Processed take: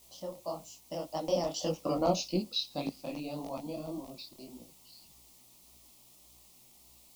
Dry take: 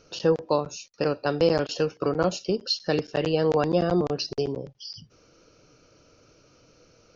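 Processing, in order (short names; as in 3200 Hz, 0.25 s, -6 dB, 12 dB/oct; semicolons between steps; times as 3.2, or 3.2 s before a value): Doppler pass-by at 1.99, 32 m/s, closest 12 m; in parallel at -8 dB: requantised 8-bit, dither triangular; on the sum: fixed phaser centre 420 Hz, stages 6; buzz 60 Hz, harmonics 7, -68 dBFS -4 dB/oct; detuned doubles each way 60 cents; gain +1.5 dB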